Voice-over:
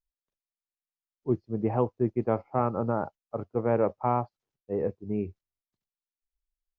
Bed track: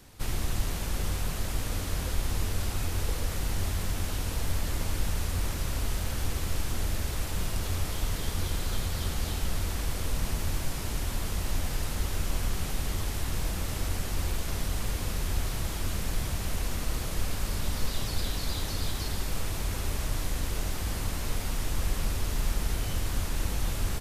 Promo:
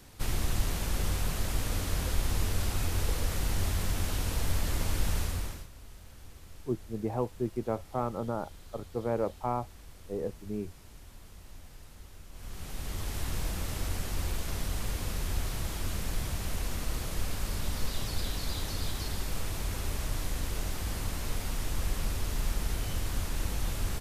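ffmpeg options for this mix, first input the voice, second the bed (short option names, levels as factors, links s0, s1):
-filter_complex "[0:a]adelay=5400,volume=0.531[s0];[1:a]volume=7.08,afade=t=out:st=5.17:d=0.51:silence=0.105925,afade=t=in:st=12.32:d=0.9:silence=0.141254[s1];[s0][s1]amix=inputs=2:normalize=0"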